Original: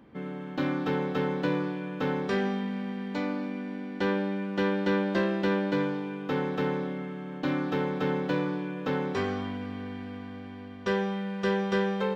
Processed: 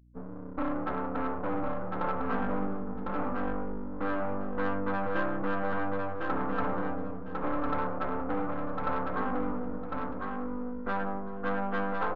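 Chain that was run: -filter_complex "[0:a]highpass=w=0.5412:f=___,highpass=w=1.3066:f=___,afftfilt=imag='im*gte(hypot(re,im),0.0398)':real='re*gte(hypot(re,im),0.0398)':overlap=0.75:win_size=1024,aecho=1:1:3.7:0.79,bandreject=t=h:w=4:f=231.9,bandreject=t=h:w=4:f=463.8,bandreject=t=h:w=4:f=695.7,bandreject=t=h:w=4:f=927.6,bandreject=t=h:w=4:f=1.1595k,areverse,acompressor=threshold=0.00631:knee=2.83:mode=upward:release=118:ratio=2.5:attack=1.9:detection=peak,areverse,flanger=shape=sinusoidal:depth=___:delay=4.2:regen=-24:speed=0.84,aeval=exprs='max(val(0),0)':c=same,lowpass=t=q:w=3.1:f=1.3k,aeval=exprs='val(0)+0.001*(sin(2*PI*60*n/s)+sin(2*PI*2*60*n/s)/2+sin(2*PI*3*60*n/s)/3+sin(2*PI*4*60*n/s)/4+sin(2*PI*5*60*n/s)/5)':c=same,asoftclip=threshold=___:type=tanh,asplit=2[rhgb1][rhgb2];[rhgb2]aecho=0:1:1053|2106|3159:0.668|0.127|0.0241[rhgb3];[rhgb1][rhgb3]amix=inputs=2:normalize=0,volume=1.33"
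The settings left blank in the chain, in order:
52, 52, 2.6, 0.0596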